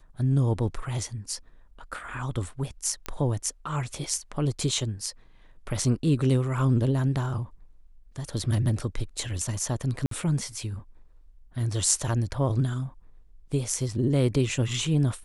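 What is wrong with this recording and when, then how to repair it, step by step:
0:03.06: click −16 dBFS
0:10.06–0:10.11: drop-out 53 ms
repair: click removal
repair the gap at 0:10.06, 53 ms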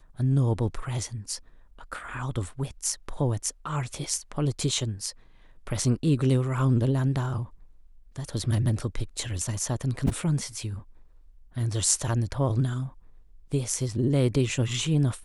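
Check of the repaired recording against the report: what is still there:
0:03.06: click

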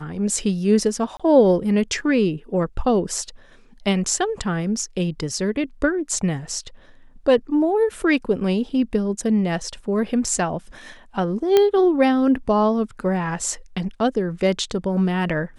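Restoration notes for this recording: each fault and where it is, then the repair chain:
0:01.17–0:01.20: drop-out 26 ms
0:11.57: click −4 dBFS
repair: click removal
repair the gap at 0:01.17, 26 ms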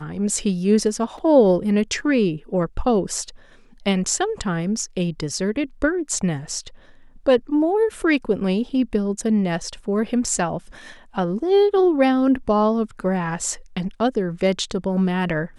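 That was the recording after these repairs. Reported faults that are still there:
none of them is left

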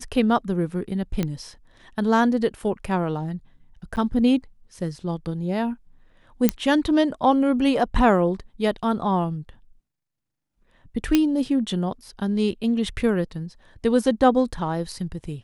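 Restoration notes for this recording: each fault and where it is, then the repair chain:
0:01.23: click −12 dBFS
0:03.96–0:03.97: drop-out 9.4 ms
0:06.49: click −3 dBFS
0:11.15: click −5 dBFS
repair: click removal
repair the gap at 0:03.96, 9.4 ms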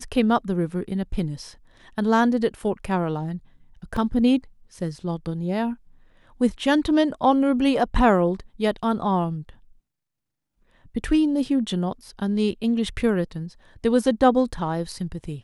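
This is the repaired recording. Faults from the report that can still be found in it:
none of them is left

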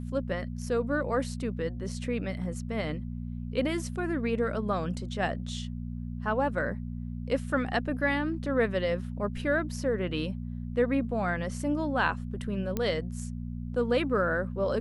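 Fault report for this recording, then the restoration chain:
mains hum 60 Hz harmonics 4 −36 dBFS
0:12.77: click −16 dBFS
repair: click removal
hum removal 60 Hz, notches 4

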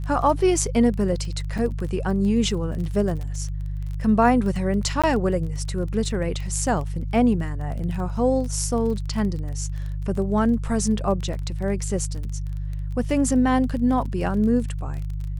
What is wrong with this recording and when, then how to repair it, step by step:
surface crackle 22 per second −30 dBFS
mains hum 50 Hz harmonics 3 −28 dBFS
0:01.58–0:01.59: drop-out 5.2 ms
0:05.02–0:05.04: drop-out 16 ms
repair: click removal
hum removal 50 Hz, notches 3
repair the gap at 0:01.58, 5.2 ms
repair the gap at 0:05.02, 16 ms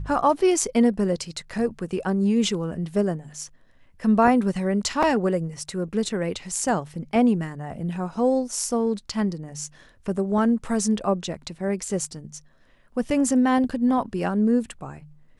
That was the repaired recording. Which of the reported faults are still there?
none of them is left

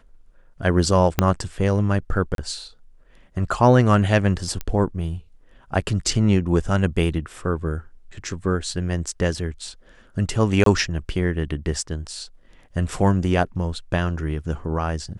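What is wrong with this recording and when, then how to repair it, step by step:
0:01.19: click −3 dBFS
0:02.35–0:02.38: drop-out 32 ms
0:04.61: click −14 dBFS
0:10.64–0:10.66: drop-out 23 ms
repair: click removal
repair the gap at 0:02.35, 32 ms
repair the gap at 0:10.64, 23 ms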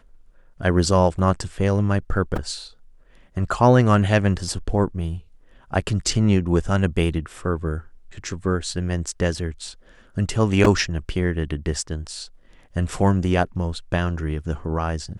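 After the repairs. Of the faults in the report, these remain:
0:01.19: click
0:04.61: click

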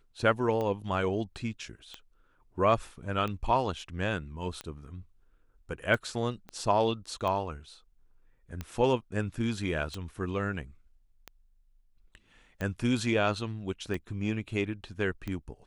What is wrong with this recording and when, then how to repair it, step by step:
scratch tick 45 rpm −22 dBFS
0:06.49: click −28 dBFS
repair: click removal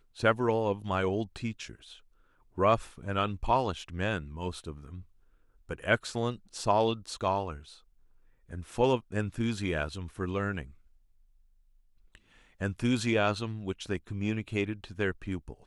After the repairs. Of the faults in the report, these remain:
0:06.49: click

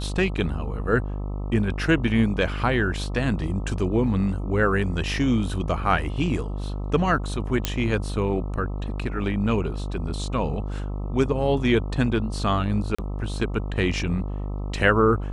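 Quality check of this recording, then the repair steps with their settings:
mains buzz 50 Hz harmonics 26 −29 dBFS
0:07.65: click −6 dBFS
0:12.95–0:12.98: drop-out 35 ms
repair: click removal
hum removal 50 Hz, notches 26
repair the gap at 0:12.95, 35 ms

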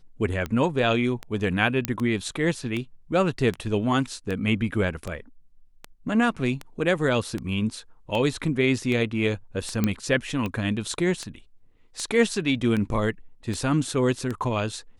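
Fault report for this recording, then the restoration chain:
scratch tick 78 rpm −17 dBFS
0:01.85: click −7 dBFS
0:09.84: click −9 dBFS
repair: click removal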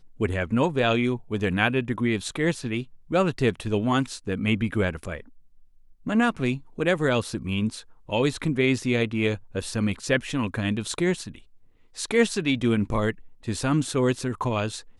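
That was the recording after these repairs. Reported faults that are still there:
none of them is left

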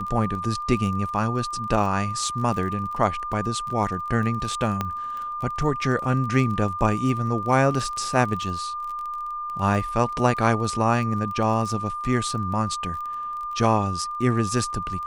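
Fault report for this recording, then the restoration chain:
surface crackle 22 per second −31 dBFS
whistle 1,200 Hz −28 dBFS
0:04.81: click −11 dBFS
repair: click removal
notch filter 1,200 Hz, Q 30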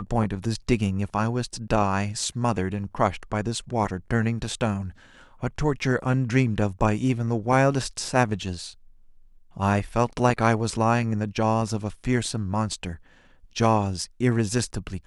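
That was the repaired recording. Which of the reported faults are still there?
none of them is left

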